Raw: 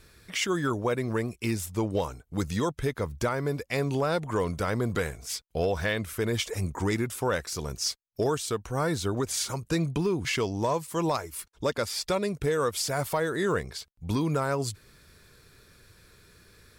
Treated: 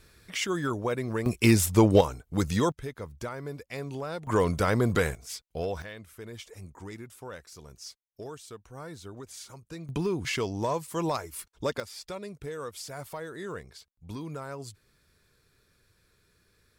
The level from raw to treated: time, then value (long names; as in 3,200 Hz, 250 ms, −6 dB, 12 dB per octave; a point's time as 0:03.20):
−2 dB
from 0:01.26 +9 dB
from 0:02.01 +2.5 dB
from 0:02.72 −8.5 dB
from 0:04.27 +3.5 dB
from 0:05.15 −5 dB
from 0:05.82 −14.5 dB
from 0:09.89 −2 dB
from 0:11.80 −11 dB